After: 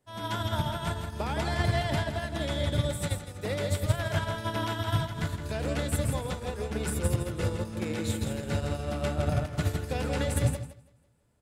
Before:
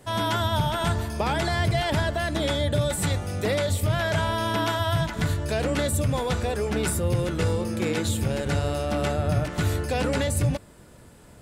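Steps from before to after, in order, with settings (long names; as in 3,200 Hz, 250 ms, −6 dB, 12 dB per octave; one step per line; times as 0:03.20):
on a send: repeating echo 164 ms, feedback 47%, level −5 dB
on the sum: expander for the loud parts 2.5 to 1, over −33 dBFS
level −1.5 dB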